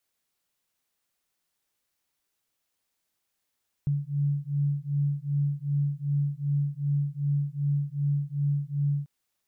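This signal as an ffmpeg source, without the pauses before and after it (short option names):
-f lavfi -i "aevalsrc='0.0422*(sin(2*PI*142*t)+sin(2*PI*144.6*t))':d=5.19:s=44100"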